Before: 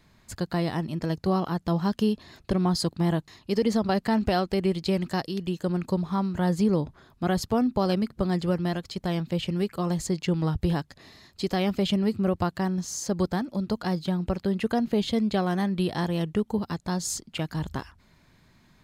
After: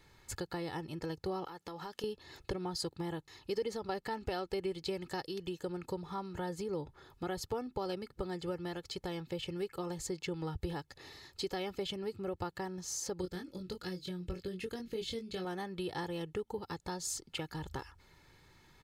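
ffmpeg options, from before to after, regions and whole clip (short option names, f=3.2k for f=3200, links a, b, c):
-filter_complex "[0:a]asettb=1/sr,asplit=3[a][b][c];[a]atrim=end=1.474[d];[b]atrim=start=1.47:end=2.04,asetpts=PTS-STARTPTS,afade=t=in:d=0.004:c=qsin,afade=t=out:st=0.566:d=0.004:c=qsin,highpass=f=470:p=1,acompressor=threshold=-35dB:ratio=10:attack=3.2:release=140:knee=1:detection=peak[e];[c]atrim=start=2.036[f];[d][e]acrossfade=d=0.004:c1=hsin:c2=qsin[g];[g][f]acrossfade=d=0.004:c1=qsin:c2=hsin,asettb=1/sr,asplit=3[h][i][j];[h]atrim=end=13.214[k];[i]atrim=start=13.21:end=15.45,asetpts=PTS-STARTPTS,afade=t=in:d=0.004:c=qsin,afade=t=out:st=2.236:d=0.004:c=qsin,equalizer=f=850:t=o:w=1.3:g=-15,asplit=2[l][m];[m]adelay=22,volume=-4.5dB[n];[l][n]amix=inputs=2:normalize=0,atrim=end_sample=98784[o];[j]atrim=start=15.446[p];[k][o]acrossfade=d=0.004:c1=hsin:c2=qsin[q];[q][p]acrossfade=d=0.004:c1=qsin:c2=hsin,lowshelf=f=170:g=-4.5,acompressor=threshold=-37dB:ratio=2.5,aecho=1:1:2.3:0.63,volume=-2dB"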